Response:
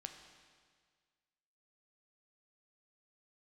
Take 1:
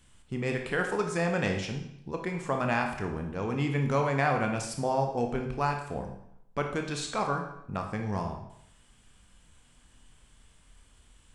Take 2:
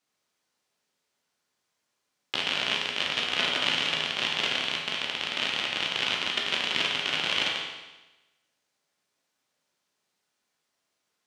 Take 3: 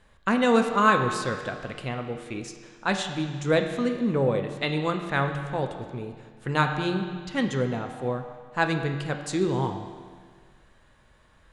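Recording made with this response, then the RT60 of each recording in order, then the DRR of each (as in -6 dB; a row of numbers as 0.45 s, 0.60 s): 3; 0.75 s, 1.1 s, 1.7 s; 3.0 dB, -2.0 dB, 5.0 dB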